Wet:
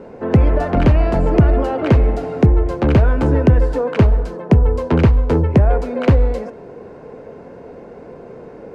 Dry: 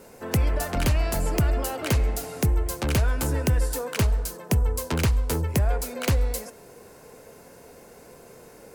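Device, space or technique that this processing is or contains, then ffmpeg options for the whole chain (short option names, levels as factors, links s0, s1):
phone in a pocket: -af "lowpass=3200,equalizer=f=310:t=o:w=2.8:g=6,highshelf=f=2100:g=-9.5,volume=2.51"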